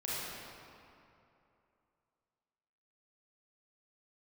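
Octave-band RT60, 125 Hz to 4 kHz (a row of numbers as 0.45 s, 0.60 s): 2.7 s, 2.8 s, 2.8 s, 2.8 s, 2.3 s, 1.7 s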